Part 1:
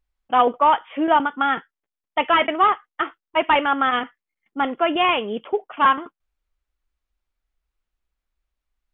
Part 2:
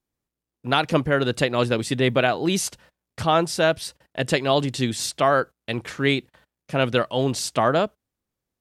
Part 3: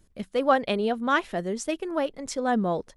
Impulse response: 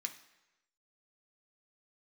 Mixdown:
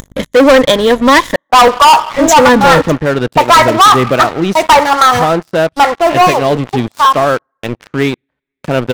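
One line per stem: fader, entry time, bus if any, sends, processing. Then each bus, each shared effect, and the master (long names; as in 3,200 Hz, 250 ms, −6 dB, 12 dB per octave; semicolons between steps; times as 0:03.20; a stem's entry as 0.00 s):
0:06.24 −7.5 dB → 0:06.47 −17.5 dB, 1.20 s, send −6 dB, running median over 15 samples; octave-band graphic EQ 125/250/500/1,000/2,000 Hz +6/−7/+5/+11/+8 dB; phaser with staggered stages 3.5 Hz
−9.0 dB, 1.95 s, send −12 dB, low-pass filter 1,300 Hz 6 dB per octave
+1.5 dB, 0.00 s, muted 0:01.36–0:02.14, send −17 dB, EQ curve with evenly spaced ripples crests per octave 1.1, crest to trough 17 dB; mains hum 50 Hz, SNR 32 dB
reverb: on, RT60 1.0 s, pre-delay 3 ms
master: upward compression, threshold −35 dBFS; leveller curve on the samples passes 5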